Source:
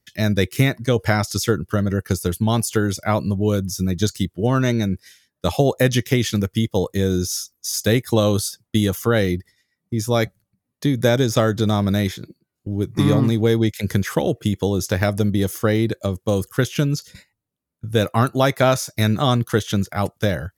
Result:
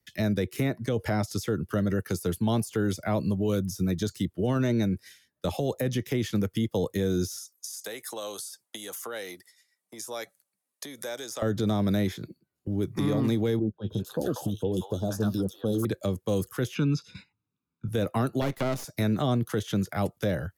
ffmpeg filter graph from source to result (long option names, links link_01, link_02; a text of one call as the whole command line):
ffmpeg -i in.wav -filter_complex "[0:a]asettb=1/sr,asplit=3[link_01][link_02][link_03];[link_01]atrim=end=7.384[link_04];[link_02]atrim=start=7.38:end=11.42,asetpts=PTS-STARTPTS,afade=type=in:duration=0.004:curve=qsin,afade=type=out:start_time=4.036:duration=0.004:curve=qsin,equalizer=frequency=8700:width=0.62:gain=11.5,acompressor=threshold=-22dB:ratio=6:attack=3.2:release=140:knee=1:detection=peak,highpass=590[link_05];[link_03]atrim=start=11.416[link_06];[link_04][link_05]acrossfade=duration=0.004:curve1=hsin:curve2=qsin[link_07];[link_07][link_06]acrossfade=duration=0.004:curve1=qsin:curve2=hsin,asettb=1/sr,asplit=3[link_08][link_09][link_10];[link_08]atrim=end=13.594[link_11];[link_09]atrim=start=13.59:end=15.85,asetpts=PTS-STARTPTS,afade=type=in:duration=0.004:curve=qsin,afade=type=out:start_time=2.256:duration=0.004:curve=qsin,asuperstop=centerf=2100:order=4:qfactor=1.3,flanger=delay=2.4:depth=7.4:regen=52:speed=1.5:shape=triangular,acrossover=split=820|2800[link_12][link_13][link_14];[link_13]adelay=190[link_15];[link_14]adelay=310[link_16];[link_12][link_15][link_16]amix=inputs=3:normalize=0,atrim=end_sample=99666[link_17];[link_10]atrim=start=15.846[link_18];[link_11][link_17]acrossfade=duration=0.004:curve1=hsin:curve2=qsin[link_19];[link_19][link_18]acrossfade=duration=0.004:curve1=qsin:curve2=hsin,asettb=1/sr,asplit=3[link_20][link_21][link_22];[link_20]atrim=end=16.754[link_23];[link_21]atrim=start=16.75:end=17.88,asetpts=PTS-STARTPTS,afade=type=in:duration=0.004:curve=qsin,afade=type=out:start_time=1.126:duration=0.004:curve=qsin,highpass=110,lowpass=4300,aecho=1:1:0.8:0.87,atrim=end_sample=49833[link_24];[link_22]atrim=start=17.876[link_25];[link_23][link_24]acrossfade=duration=0.004:curve1=hsin:curve2=qsin[link_26];[link_26][link_25]acrossfade=duration=0.004:curve1=qsin:curve2=hsin,asettb=1/sr,asplit=3[link_27][link_28][link_29];[link_27]atrim=end=18.414[link_30];[link_28]atrim=start=18.41:end=18.84,asetpts=PTS-STARTPTS,afade=type=in:duration=0.004:curve=qsin,afade=type=out:start_time=0.426:duration=0.004:curve=qsin,deesser=0.3,aeval=exprs='max(val(0),0)':channel_layout=same[link_31];[link_29]atrim=start=18.836[link_32];[link_30][link_31]acrossfade=duration=0.004:curve1=hsin:curve2=qsin[link_33];[link_33][link_32]acrossfade=duration=0.004:curve1=qsin:curve2=hsin,equalizer=frequency=5900:width=1.5:gain=-2.5,acrossover=split=110|230|720|1500[link_34][link_35][link_36][link_37][link_38];[link_34]acompressor=threshold=-36dB:ratio=4[link_39];[link_35]acompressor=threshold=-25dB:ratio=4[link_40];[link_36]acompressor=threshold=-19dB:ratio=4[link_41];[link_37]acompressor=threshold=-39dB:ratio=4[link_42];[link_38]acompressor=threshold=-35dB:ratio=4[link_43];[link_39][link_40][link_41][link_42][link_43]amix=inputs=5:normalize=0,alimiter=limit=-15dB:level=0:latency=1:release=17,volume=-3dB" out.wav